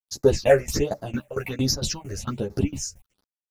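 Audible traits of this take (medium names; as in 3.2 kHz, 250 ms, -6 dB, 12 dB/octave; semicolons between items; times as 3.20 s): a quantiser's noise floor 10-bit, dither none; phasing stages 6, 1.3 Hz, lowest notch 230–2900 Hz; tremolo saw down 4.4 Hz, depth 95%; a shimmering, thickened sound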